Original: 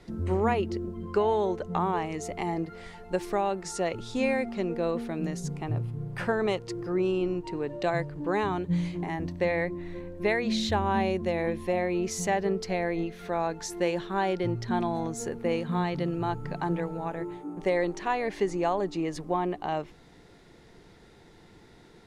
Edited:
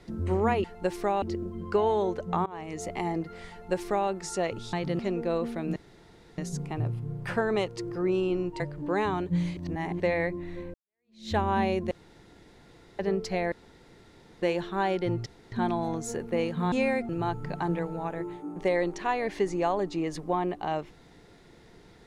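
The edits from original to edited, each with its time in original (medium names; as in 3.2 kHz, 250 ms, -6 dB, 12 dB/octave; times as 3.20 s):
1.88–2.26 s: fade in, from -23 dB
2.93–3.51 s: copy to 0.64 s
4.15–4.52 s: swap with 15.84–16.10 s
5.29 s: insert room tone 0.62 s
7.51–7.98 s: delete
8.95–9.38 s: reverse
10.12–10.71 s: fade in exponential
11.29–12.37 s: room tone
12.90–13.80 s: room tone
14.64 s: insert room tone 0.26 s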